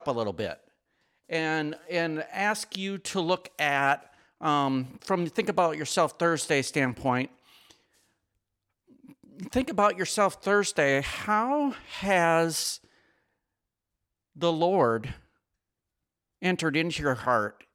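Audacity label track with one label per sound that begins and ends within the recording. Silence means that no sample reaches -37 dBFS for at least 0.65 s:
1.300000	7.710000	sound
9.400000	12.760000	sound
14.410000	15.130000	sound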